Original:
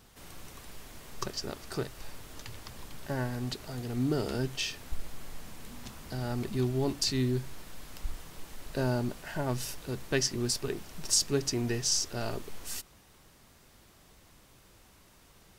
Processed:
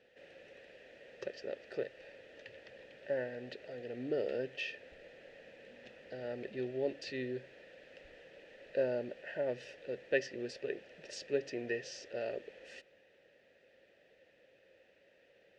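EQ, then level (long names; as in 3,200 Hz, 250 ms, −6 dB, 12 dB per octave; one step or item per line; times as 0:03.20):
formant filter e
high-frequency loss of the air 120 metres
high-shelf EQ 7,400 Hz +6 dB
+8.5 dB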